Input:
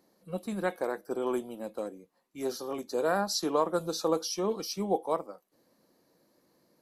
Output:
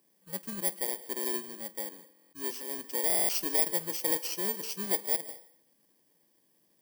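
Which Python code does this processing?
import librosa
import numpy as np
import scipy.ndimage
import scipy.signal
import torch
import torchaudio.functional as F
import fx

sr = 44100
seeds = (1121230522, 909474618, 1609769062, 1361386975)

y = fx.bit_reversed(x, sr, seeds[0], block=32)
y = fx.high_shelf(y, sr, hz=4600.0, db=9.0)
y = fx.rev_plate(y, sr, seeds[1], rt60_s=0.55, hf_ratio=1.0, predelay_ms=120, drr_db=16.0)
y = fx.buffer_glitch(y, sr, at_s=(2.12, 3.08), block=1024, repeats=8)
y = F.gain(torch.from_numpy(y), -6.5).numpy()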